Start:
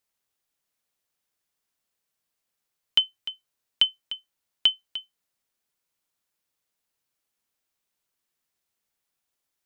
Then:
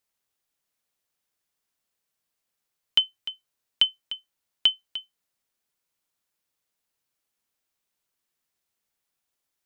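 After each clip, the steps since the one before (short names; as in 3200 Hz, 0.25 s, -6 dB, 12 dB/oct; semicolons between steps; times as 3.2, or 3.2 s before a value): nothing audible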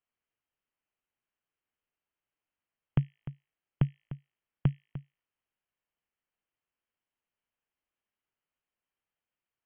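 de-hum 54.67 Hz, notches 26; inverted band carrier 3200 Hz; gain -5 dB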